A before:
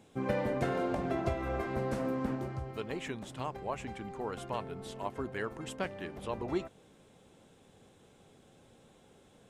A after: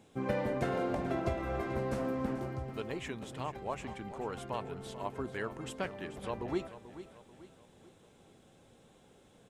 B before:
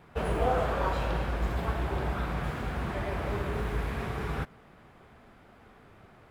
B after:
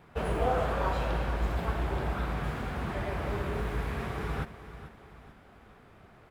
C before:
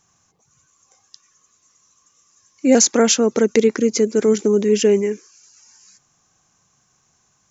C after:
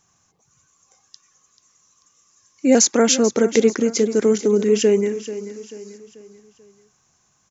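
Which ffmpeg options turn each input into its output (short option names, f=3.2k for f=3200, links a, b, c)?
-af "aecho=1:1:438|876|1314|1752:0.211|0.0909|0.0391|0.0168,volume=-1dB"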